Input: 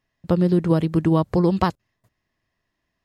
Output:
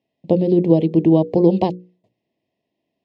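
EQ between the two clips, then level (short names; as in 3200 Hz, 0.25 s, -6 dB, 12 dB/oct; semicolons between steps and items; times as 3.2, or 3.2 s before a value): BPF 230–2300 Hz; Butterworth band-stop 1400 Hz, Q 0.65; notches 60/120/180/240/300/360/420/480/540 Hz; +8.0 dB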